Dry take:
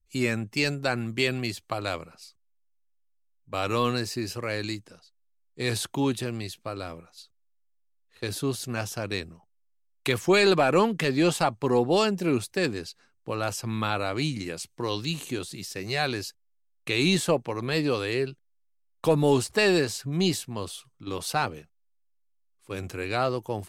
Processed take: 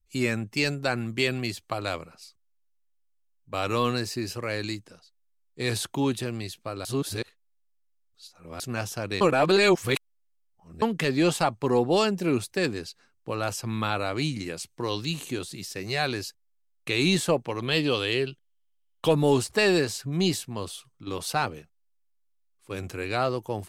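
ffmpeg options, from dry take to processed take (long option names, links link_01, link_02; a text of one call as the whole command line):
ffmpeg -i in.wav -filter_complex "[0:a]asettb=1/sr,asplit=3[link_01][link_02][link_03];[link_01]atrim=end=17.494[link_04];[link_02]atrim=start=17.49:end=19.13,asetpts=PTS-STARTPTS,afade=type=in:duration=0.004:curve=qsin,afade=type=out:start_time=1.636:duration=0.004:curve=qsin,equalizer=frequency=3100:width_type=o:width=0.33:gain=13.5[link_05];[link_03]atrim=start=19.126[link_06];[link_04][link_05]acrossfade=duration=0.004:curve1=hsin:curve2=qsin[link_07];[link_07][link_06]acrossfade=duration=0.004:curve1=qsin:curve2=hsin,asplit=5[link_08][link_09][link_10][link_11][link_12];[link_08]atrim=end=6.852[link_13];[link_09]atrim=start=6.848:end=8.602,asetpts=PTS-STARTPTS,areverse[link_14];[link_10]atrim=start=8.598:end=9.212[link_15];[link_11]atrim=start=9.208:end=10.822,asetpts=PTS-STARTPTS,areverse[link_16];[link_12]atrim=start=10.818[link_17];[link_13][link_14]acrossfade=duration=0.004:curve1=hsin:curve2=hsin[link_18];[link_18][link_15]acrossfade=duration=0.004:curve1=hsin:curve2=hsin[link_19];[link_19][link_16]acrossfade=duration=0.004:curve1=hsin:curve2=hsin[link_20];[link_20][link_17]acrossfade=duration=0.004:curve1=hsin:curve2=hsin" out.wav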